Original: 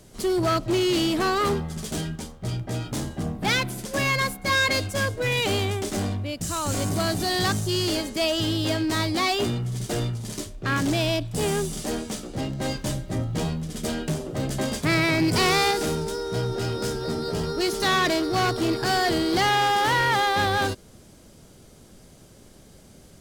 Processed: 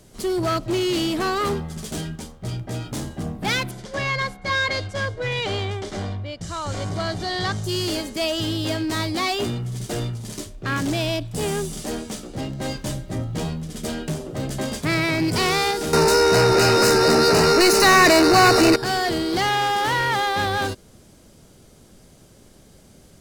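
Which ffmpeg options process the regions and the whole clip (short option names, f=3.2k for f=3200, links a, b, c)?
-filter_complex "[0:a]asettb=1/sr,asplit=3[a][b][c];[a]atrim=end=3.714[d];[b]atrim=start=3.71:end=7.64,asetpts=PTS-STARTPTS,afade=t=in:d=0.004:c=qsin,afade=t=out:st=3.926:d=0.004:c=qsin,lowpass=4.8k,equalizer=f=260:w=2.3:g=-8,bandreject=f=2.6k:w=9.2[e];[c]atrim=start=7.636[f];[d][e]acrossfade=d=0.004:c1=hsin:c2=qsin[g];[g][f]acrossfade=d=0.004:c1=qsin:c2=hsin,asettb=1/sr,asplit=3[h][i][j];[h]atrim=end=15.934[k];[i]atrim=start=15.93:end=18.76,asetpts=PTS-STARTPTS,afade=t=in:d=0.004:c=qsin,afade=t=out:st=2.826:d=0.004:c=qsin,acontrast=78,asplit=2[l][m];[m]highpass=f=720:p=1,volume=24dB,asoftclip=type=tanh:threshold=-8.5dB[n];[l][n]amix=inputs=2:normalize=0,lowpass=f=5.6k:p=1,volume=-6dB,asuperstop=centerf=3300:order=4:qfactor=3.9[o];[j]atrim=start=18.756[p];[k][o]acrossfade=d=0.004:c1=hsin:c2=qsin[q];[q][p]acrossfade=d=0.004:c1=qsin:c2=hsin"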